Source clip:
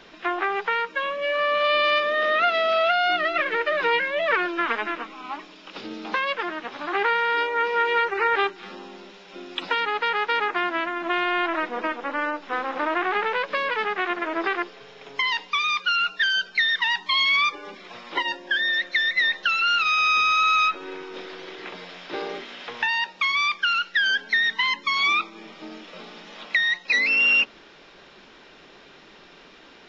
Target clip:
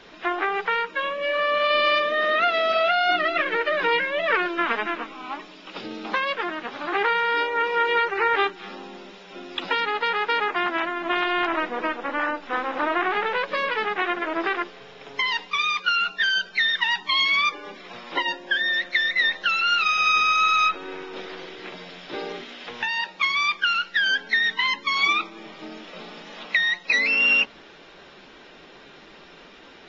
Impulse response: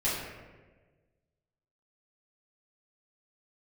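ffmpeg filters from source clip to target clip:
-filter_complex "[0:a]asettb=1/sr,asplit=3[a][b][c];[a]atrim=end=21.464[d];[b]atrim=start=21.46:end=22.97,asetpts=PTS-STARTPTS,afade=t=in:d=0.004:c=qsin,afade=t=out:st=1.506:d=0.004:c=qsin,equalizer=f=1.1k:w=0.56:g=-4[e];[c]atrim=start=22.966[f];[d][e]acrossfade=d=0.004:c1=hsin:c2=qsin[g];[g][f]acrossfade=d=0.004:c1=qsin:c2=hsin" -ar 44100 -c:a aac -b:a 24k

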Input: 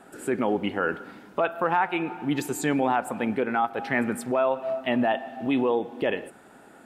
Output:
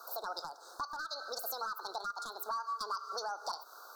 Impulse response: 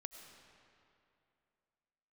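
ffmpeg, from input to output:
-af "highpass=740,acompressor=threshold=-45dB:ratio=3,aeval=exprs='clip(val(0),-1,0.0178)':c=same,asuperstop=centerf=1400:order=12:qfactor=0.96,asetrate=76440,aresample=44100,volume=7dB"

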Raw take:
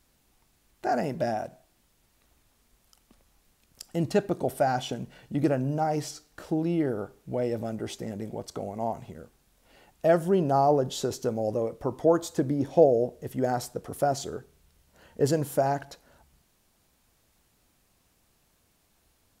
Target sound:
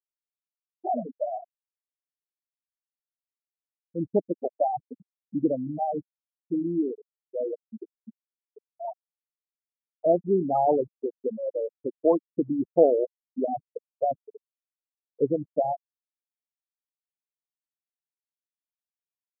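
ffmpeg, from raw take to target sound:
-af "highpass=f=61:p=1,afftfilt=real='re*gte(hypot(re,im),0.224)':imag='im*gte(hypot(re,im),0.224)':win_size=1024:overlap=0.75,lowshelf=f=170:t=q:w=1.5:g=-7.5"

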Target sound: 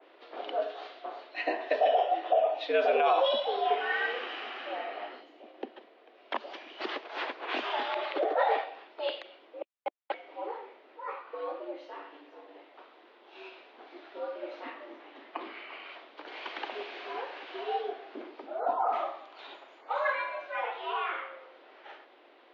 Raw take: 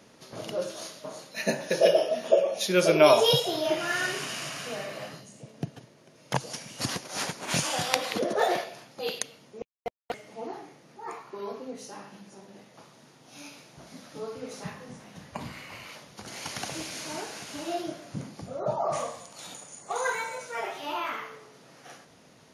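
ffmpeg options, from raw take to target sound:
-af "alimiter=limit=-15.5dB:level=0:latency=1:release=44,highpass=f=240:t=q:w=0.5412,highpass=f=240:t=q:w=1.307,lowpass=f=3.5k:t=q:w=0.5176,lowpass=f=3.5k:t=q:w=0.7071,lowpass=f=3.5k:t=q:w=1.932,afreqshift=93,adynamicequalizer=threshold=0.00631:dfrequency=2100:dqfactor=0.7:tfrequency=2100:tqfactor=0.7:attack=5:release=100:ratio=0.375:range=2:mode=cutabove:tftype=highshelf"

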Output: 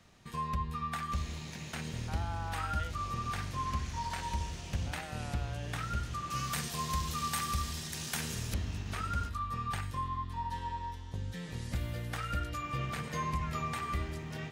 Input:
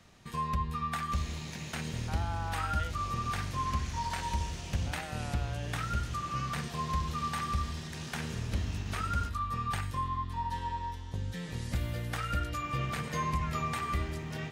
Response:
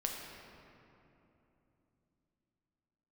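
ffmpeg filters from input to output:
-filter_complex "[0:a]asettb=1/sr,asplit=3[a][b][c];[a]atrim=end=6.304[d];[b]atrim=start=6.3:end=8.54,asetpts=PTS-STARTPTS,afade=t=in:d=0.004:c=qsin,afade=t=out:st=2.236:d=0.004:c=qsin,aemphasis=mode=production:type=75kf[e];[c]atrim=start=8.536[f];[d][e]acrossfade=d=0.004:c1=hsin:c2=qsin[g];[g][f]acrossfade=d=0.004:c1=qsin:c2=hsin,volume=-2.5dB"

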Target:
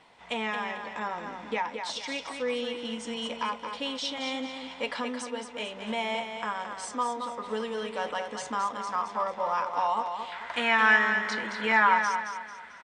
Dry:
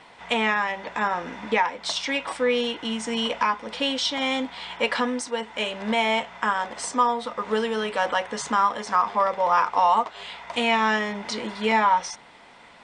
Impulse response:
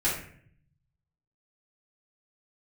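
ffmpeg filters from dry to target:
-af "asetnsamples=n=441:p=0,asendcmd='10.32 equalizer g 15',equalizer=f=1.6k:t=o:w=0.87:g=-2.5,aecho=1:1:221|442|663|884:0.447|0.17|0.0645|0.0245,volume=-8dB"

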